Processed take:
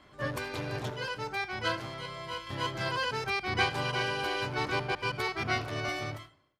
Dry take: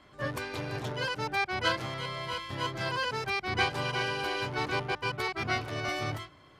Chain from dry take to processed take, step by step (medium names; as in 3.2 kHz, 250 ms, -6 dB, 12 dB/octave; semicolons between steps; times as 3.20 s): fade out at the end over 0.80 s; 0.90–2.47 s: feedback comb 55 Hz, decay 0.2 s, harmonics all, mix 70%; reverberation RT60 0.30 s, pre-delay 35 ms, DRR 15.5 dB